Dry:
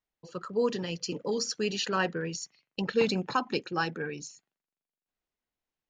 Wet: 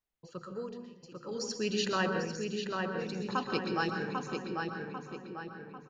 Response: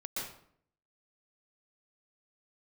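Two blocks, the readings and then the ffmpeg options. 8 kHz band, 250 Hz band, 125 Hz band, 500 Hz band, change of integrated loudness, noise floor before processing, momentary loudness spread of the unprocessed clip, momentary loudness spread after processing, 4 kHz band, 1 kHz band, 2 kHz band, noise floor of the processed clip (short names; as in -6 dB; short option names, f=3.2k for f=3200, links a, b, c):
-6.0 dB, -2.0 dB, -2.0 dB, -4.5 dB, -4.0 dB, under -85 dBFS, 12 LU, 14 LU, -4.0 dB, -1.5 dB, -2.0 dB, -58 dBFS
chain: -filter_complex "[0:a]tremolo=f=0.54:d=0.95,asplit=2[a][b];[b]adelay=795,lowpass=f=3k:p=1,volume=-3.5dB,asplit=2[c][d];[d]adelay=795,lowpass=f=3k:p=1,volume=0.49,asplit=2[e][f];[f]adelay=795,lowpass=f=3k:p=1,volume=0.49,asplit=2[g][h];[h]adelay=795,lowpass=f=3k:p=1,volume=0.49,asplit=2[i][j];[j]adelay=795,lowpass=f=3k:p=1,volume=0.49,asplit=2[k][l];[l]adelay=795,lowpass=f=3k:p=1,volume=0.49[m];[a][c][e][g][i][k][m]amix=inputs=7:normalize=0,asplit=2[n][o];[1:a]atrim=start_sample=2205,lowshelf=f=210:g=10.5[p];[o][p]afir=irnorm=-1:irlink=0,volume=-5dB[q];[n][q]amix=inputs=2:normalize=0,volume=-5dB"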